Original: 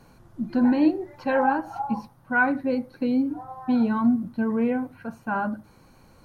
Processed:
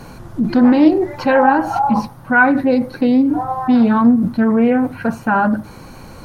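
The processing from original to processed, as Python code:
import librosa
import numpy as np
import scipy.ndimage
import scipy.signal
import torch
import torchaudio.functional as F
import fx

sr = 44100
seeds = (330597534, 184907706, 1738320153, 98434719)

p1 = fx.over_compress(x, sr, threshold_db=-32.0, ratio=-1.0)
p2 = x + (p1 * librosa.db_to_amplitude(-2.5))
p3 = fx.doppler_dist(p2, sr, depth_ms=0.18)
y = p3 * librosa.db_to_amplitude(8.5)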